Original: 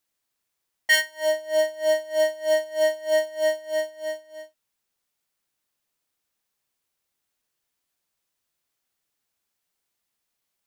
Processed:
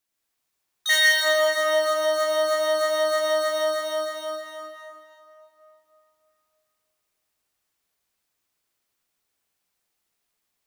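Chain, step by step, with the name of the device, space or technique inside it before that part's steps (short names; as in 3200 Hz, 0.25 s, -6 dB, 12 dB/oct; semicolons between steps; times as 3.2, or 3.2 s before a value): shimmer-style reverb (harmoniser +12 st -6 dB; reverb RT60 2.9 s, pre-delay 81 ms, DRR -4.5 dB); gain -3 dB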